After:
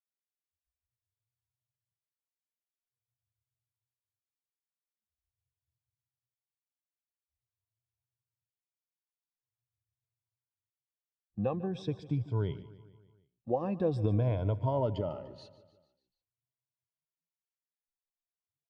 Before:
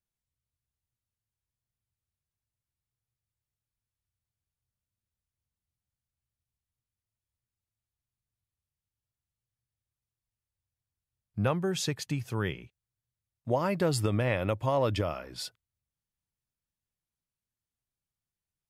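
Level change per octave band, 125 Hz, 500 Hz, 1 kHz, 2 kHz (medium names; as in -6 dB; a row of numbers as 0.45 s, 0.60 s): 0.0 dB, -3.0 dB, -5.5 dB, -17.0 dB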